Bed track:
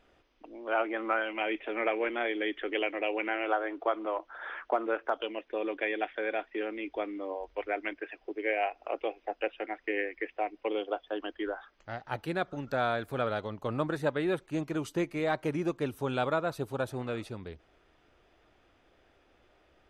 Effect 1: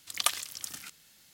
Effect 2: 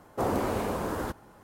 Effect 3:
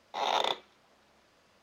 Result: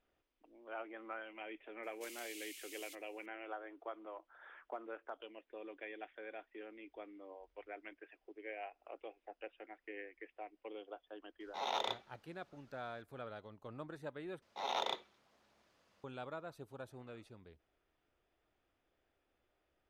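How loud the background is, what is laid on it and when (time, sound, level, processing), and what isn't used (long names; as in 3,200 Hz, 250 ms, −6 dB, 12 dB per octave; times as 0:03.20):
bed track −16.5 dB
0:01.83: mix in 2 −4 dB + Chebyshev high-pass with heavy ripple 2,100 Hz, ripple 3 dB
0:11.40: mix in 3 −8.5 dB
0:14.42: overwrite with 3 −8.5 dB
not used: 1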